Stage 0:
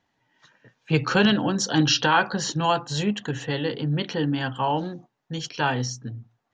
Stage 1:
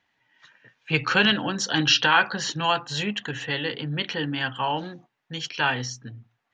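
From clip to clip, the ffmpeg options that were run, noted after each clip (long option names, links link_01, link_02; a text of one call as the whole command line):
ffmpeg -i in.wav -af "equalizer=frequency=2300:width_type=o:width=2:gain=11.5,volume=-5.5dB" out.wav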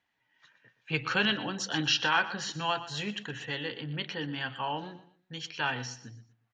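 ffmpeg -i in.wav -af "aecho=1:1:121|242|363:0.178|0.0551|0.0171,volume=-7.5dB" out.wav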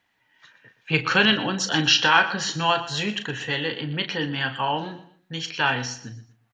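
ffmpeg -i in.wav -filter_complex "[0:a]asplit=2[link_01][link_02];[link_02]adelay=37,volume=-10.5dB[link_03];[link_01][link_03]amix=inputs=2:normalize=0,volume=8.5dB" out.wav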